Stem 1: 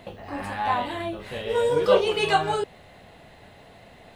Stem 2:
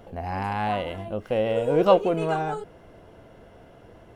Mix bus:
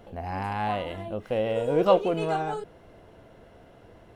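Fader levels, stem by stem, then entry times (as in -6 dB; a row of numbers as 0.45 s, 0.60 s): -17.5 dB, -2.5 dB; 0.00 s, 0.00 s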